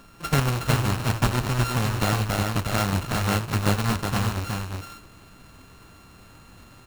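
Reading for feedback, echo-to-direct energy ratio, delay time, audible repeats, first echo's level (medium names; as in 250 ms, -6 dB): no regular repeats, -4.0 dB, 366 ms, 1, -4.0 dB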